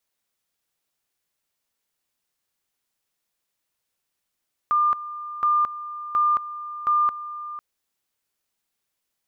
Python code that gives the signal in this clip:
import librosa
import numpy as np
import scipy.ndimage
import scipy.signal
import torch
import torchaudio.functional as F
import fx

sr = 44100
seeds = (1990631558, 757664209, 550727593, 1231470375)

y = fx.two_level_tone(sr, hz=1200.0, level_db=-16.5, drop_db=14.5, high_s=0.22, low_s=0.5, rounds=4)